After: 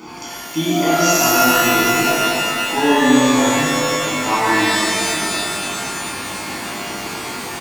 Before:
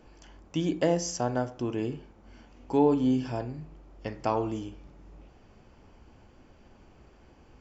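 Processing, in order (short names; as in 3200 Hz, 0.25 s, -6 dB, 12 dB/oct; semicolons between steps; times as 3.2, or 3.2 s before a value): HPF 270 Hz 12 dB/oct; high shelf 6500 Hz +8 dB; comb 0.9 ms, depth 95%; reverse; upward compressor, threshold -28 dBFS; reverse; sample leveller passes 1; shimmer reverb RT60 2.7 s, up +12 st, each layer -2 dB, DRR -9.5 dB; gain -1 dB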